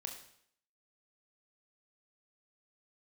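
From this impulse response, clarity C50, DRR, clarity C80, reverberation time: 7.5 dB, 2.5 dB, 10.0 dB, 0.65 s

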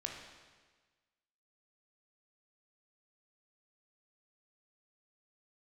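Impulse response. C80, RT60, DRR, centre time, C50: 5.5 dB, 1.4 s, 0.5 dB, 53 ms, 3.5 dB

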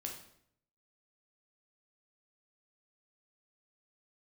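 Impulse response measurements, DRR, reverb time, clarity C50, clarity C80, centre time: 0.5 dB, 0.70 s, 6.0 dB, 9.5 dB, 27 ms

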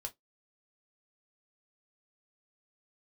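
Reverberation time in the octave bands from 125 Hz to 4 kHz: 0.15, 0.15, 0.15, 0.15, 0.10, 0.10 s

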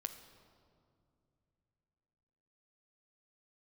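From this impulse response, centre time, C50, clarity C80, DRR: 19 ms, 10.0 dB, 11.0 dB, 7.0 dB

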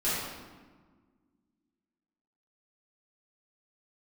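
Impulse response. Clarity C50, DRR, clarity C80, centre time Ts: -2.0 dB, -12.5 dB, 0.5 dB, 97 ms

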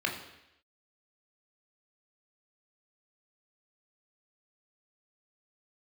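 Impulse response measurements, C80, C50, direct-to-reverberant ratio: 10.0 dB, 7.5 dB, 0.5 dB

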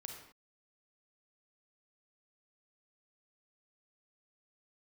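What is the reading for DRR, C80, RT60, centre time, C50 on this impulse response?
2.0 dB, 6.0 dB, not exponential, 37 ms, 3.5 dB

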